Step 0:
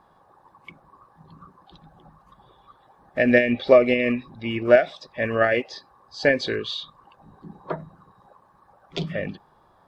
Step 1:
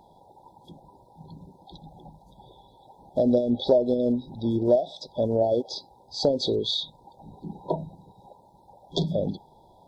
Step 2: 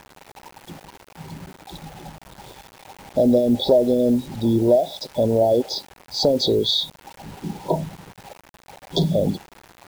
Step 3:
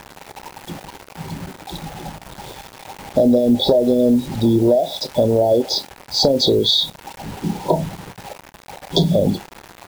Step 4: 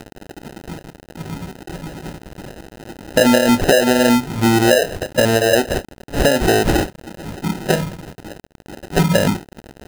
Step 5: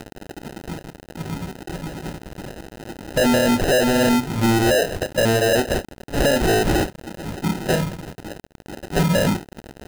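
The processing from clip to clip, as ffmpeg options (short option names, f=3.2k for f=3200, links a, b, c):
-af "afftfilt=real='re*(1-between(b*sr/4096,1000,3300))':imag='im*(1-between(b*sr/4096,1000,3300))':win_size=4096:overlap=0.75,acompressor=threshold=-26dB:ratio=2.5,volume=4.5dB"
-filter_complex "[0:a]asplit=2[a][b];[b]alimiter=limit=-20dB:level=0:latency=1:release=12,volume=3dB[c];[a][c]amix=inputs=2:normalize=0,acrusher=bits=6:mix=0:aa=0.000001"
-filter_complex "[0:a]acompressor=threshold=-19dB:ratio=4,asplit=2[a][b];[b]adelay=29,volume=-14dB[c];[a][c]amix=inputs=2:normalize=0,volume=7dB"
-af "acrusher=samples=39:mix=1:aa=0.000001,acompressor=mode=upward:threshold=-35dB:ratio=2.5,volume=1dB"
-af "asoftclip=type=hard:threshold=-14.5dB"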